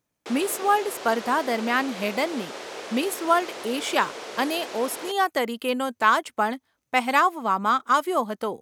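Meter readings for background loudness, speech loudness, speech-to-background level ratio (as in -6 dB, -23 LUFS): -36.5 LUFS, -24.5 LUFS, 12.0 dB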